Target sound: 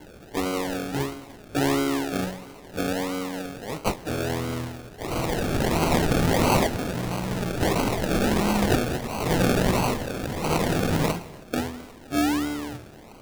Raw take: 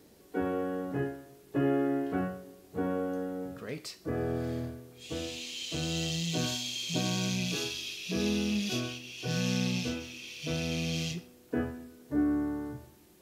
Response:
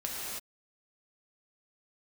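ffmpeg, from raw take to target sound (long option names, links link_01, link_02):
-filter_complex "[0:a]asettb=1/sr,asplit=3[link_01][link_02][link_03];[link_01]atrim=end=6.664[link_04];[link_02]atrim=start=6.66:end=7.61,asetpts=PTS-STARTPTS,afade=type=in:duration=0.004:curve=qsin,afade=type=out:start_time=0.946:duration=0.004:curve=qsin,acrossover=split=190[link_05][link_06];[link_06]acompressor=threshold=-42dB:ratio=6[link_07];[link_05][link_07]amix=inputs=2:normalize=0[link_08];[link_03]atrim=start=7.606[link_09];[link_04][link_08]acrossfade=duration=0.004:curve1=hsin:curve2=qsin[link_10];[link_10][link_09]acrossfade=duration=0.004:curve1=qsin:curve2=hsin,aexciter=amount=3.2:drive=6.3:freq=2400,acrusher=samples=35:mix=1:aa=0.000001:lfo=1:lforange=21:lforate=1.5,asplit=2[link_11][link_12];[1:a]atrim=start_sample=2205[link_13];[link_12][link_13]afir=irnorm=-1:irlink=0,volume=-21.5dB[link_14];[link_11][link_14]amix=inputs=2:normalize=0,volume=4dB"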